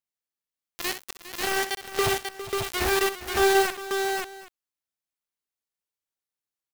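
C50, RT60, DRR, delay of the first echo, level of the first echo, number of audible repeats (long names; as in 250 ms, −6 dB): no reverb audible, no reverb audible, no reverb audible, 64 ms, −11.5 dB, 4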